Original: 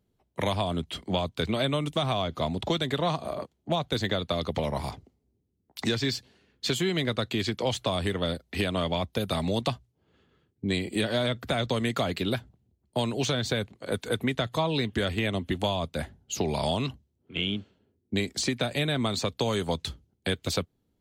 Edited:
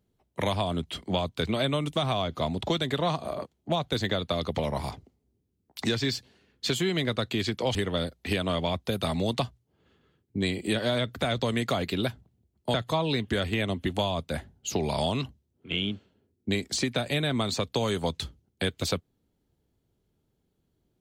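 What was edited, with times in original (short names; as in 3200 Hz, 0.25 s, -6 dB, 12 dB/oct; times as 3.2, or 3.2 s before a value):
7.75–8.03 cut
13.02–14.39 cut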